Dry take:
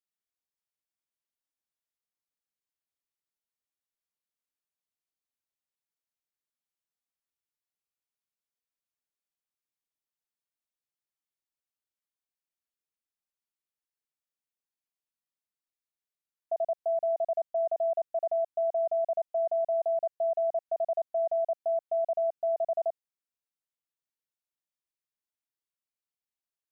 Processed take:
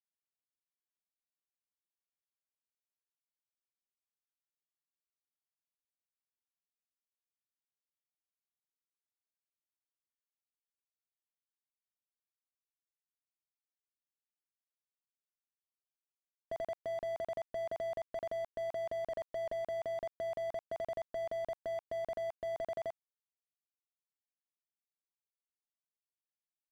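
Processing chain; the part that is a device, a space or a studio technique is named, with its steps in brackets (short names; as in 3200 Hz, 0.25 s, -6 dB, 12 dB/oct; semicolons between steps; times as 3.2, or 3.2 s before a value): 19.12–19.53 comb 2 ms, depth 68%; early transistor amplifier (crossover distortion -58.5 dBFS; slew limiter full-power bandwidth 3.4 Hz); gain +10 dB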